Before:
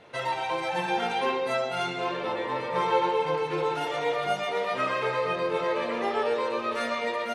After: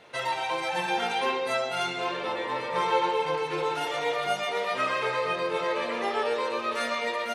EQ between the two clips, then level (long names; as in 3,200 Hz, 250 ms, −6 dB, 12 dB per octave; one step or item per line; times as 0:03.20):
spectral tilt +1.5 dB per octave
0.0 dB